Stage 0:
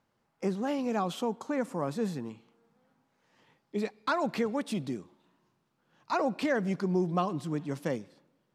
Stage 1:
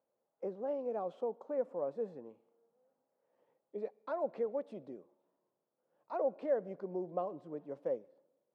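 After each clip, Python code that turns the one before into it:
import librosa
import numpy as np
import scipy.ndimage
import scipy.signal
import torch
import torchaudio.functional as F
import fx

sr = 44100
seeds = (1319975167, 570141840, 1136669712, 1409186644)

y = fx.bandpass_q(x, sr, hz=540.0, q=3.5)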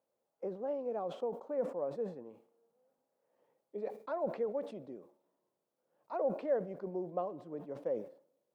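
y = fx.sustainer(x, sr, db_per_s=130.0)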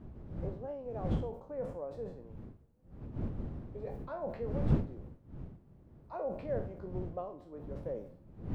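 y = fx.spec_trails(x, sr, decay_s=0.36)
y = fx.dmg_wind(y, sr, seeds[0], corner_hz=170.0, level_db=-35.0)
y = y * 10.0 ** (-5.0 / 20.0)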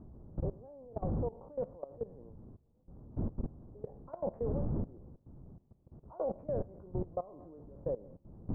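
y = scipy.signal.sosfilt(scipy.signal.butter(4, 1100.0, 'lowpass', fs=sr, output='sos'), x)
y = fx.level_steps(y, sr, step_db=19)
y = y * 10.0 ** (5.5 / 20.0)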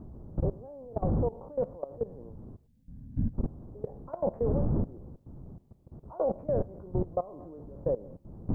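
y = fx.spec_box(x, sr, start_s=2.66, length_s=0.68, low_hz=280.0, high_hz=1500.0, gain_db=-18)
y = y * 10.0 ** (6.5 / 20.0)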